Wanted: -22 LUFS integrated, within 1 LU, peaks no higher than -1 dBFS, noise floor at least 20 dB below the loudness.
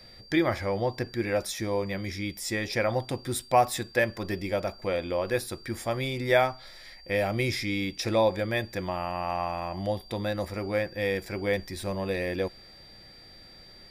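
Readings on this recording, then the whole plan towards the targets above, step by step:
steady tone 4.7 kHz; tone level -50 dBFS; loudness -29.0 LUFS; peak level -8.5 dBFS; loudness target -22.0 LUFS
-> band-stop 4.7 kHz, Q 30; trim +7 dB

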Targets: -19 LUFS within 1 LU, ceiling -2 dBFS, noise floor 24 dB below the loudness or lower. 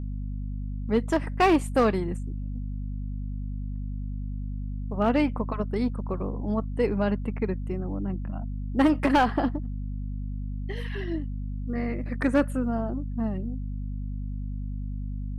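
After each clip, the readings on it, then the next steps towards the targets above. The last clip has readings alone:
clipped samples 0.3%; clipping level -14.5 dBFS; hum 50 Hz; highest harmonic 250 Hz; hum level -29 dBFS; loudness -28.5 LUFS; peak level -14.5 dBFS; loudness target -19.0 LUFS
-> clip repair -14.5 dBFS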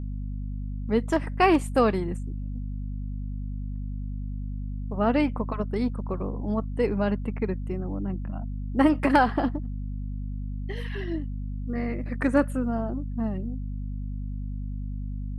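clipped samples 0.0%; hum 50 Hz; highest harmonic 250 Hz; hum level -29 dBFS
-> hum notches 50/100/150/200/250 Hz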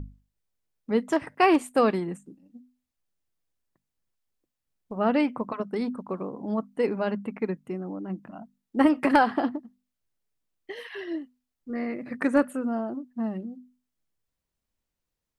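hum not found; loudness -27.0 LUFS; peak level -5.0 dBFS; loudness target -19.0 LUFS
-> trim +8 dB; peak limiter -2 dBFS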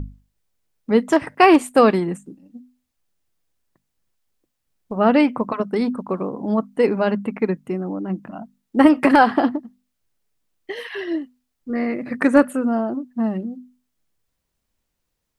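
loudness -19.5 LUFS; peak level -2.0 dBFS; noise floor -77 dBFS

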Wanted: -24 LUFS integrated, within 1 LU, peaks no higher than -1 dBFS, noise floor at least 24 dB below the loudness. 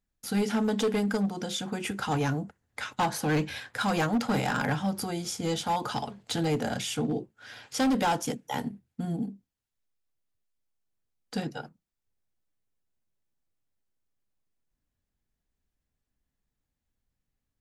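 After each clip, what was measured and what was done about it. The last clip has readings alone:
clipped samples 1.7%; clipping level -21.5 dBFS; loudness -30.0 LUFS; peak level -21.5 dBFS; loudness target -24.0 LUFS
-> clip repair -21.5 dBFS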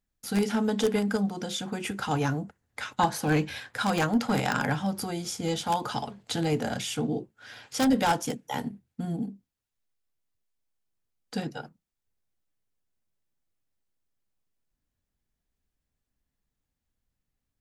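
clipped samples 0.0%; loudness -29.0 LUFS; peak level -12.5 dBFS; loudness target -24.0 LUFS
-> trim +5 dB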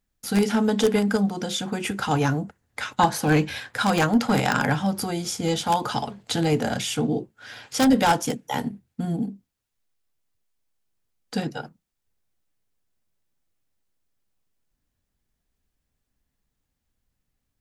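loudness -24.0 LUFS; peak level -7.5 dBFS; noise floor -80 dBFS

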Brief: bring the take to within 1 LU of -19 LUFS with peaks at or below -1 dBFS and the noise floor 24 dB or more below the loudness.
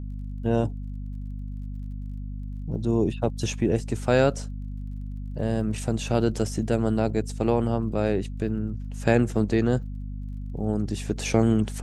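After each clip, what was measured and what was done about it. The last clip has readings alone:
tick rate 30 per s; hum 50 Hz; highest harmonic 250 Hz; hum level -31 dBFS; loudness -26.0 LUFS; peak level -6.0 dBFS; loudness target -19.0 LUFS
-> de-click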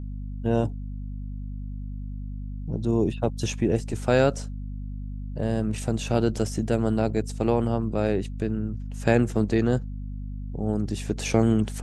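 tick rate 0 per s; hum 50 Hz; highest harmonic 250 Hz; hum level -31 dBFS
-> de-hum 50 Hz, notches 5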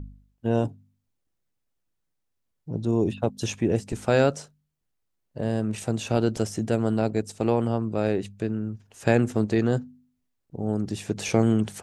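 hum not found; loudness -26.0 LUFS; peak level -6.5 dBFS; loudness target -19.0 LUFS
-> trim +7 dB; peak limiter -1 dBFS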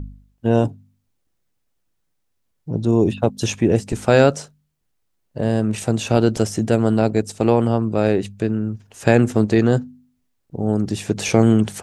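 loudness -19.0 LUFS; peak level -1.0 dBFS; noise floor -70 dBFS

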